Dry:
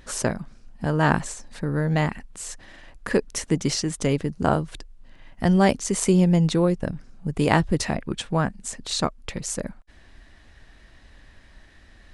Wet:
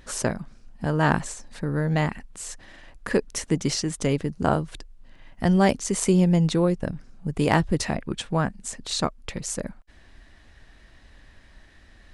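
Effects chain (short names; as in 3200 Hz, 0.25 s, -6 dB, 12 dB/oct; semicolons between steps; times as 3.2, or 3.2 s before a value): overloaded stage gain 6 dB; gain -1 dB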